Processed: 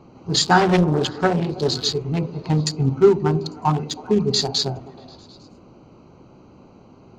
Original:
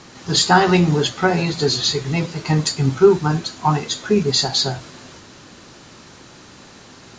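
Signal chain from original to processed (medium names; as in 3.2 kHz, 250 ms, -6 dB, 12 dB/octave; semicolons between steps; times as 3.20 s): local Wiener filter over 25 samples; on a send: repeats whose band climbs or falls 106 ms, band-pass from 210 Hz, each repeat 0.7 oct, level -9 dB; 0.60–1.72 s: on the sum: loudspeaker Doppler distortion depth 0.57 ms; trim -1.5 dB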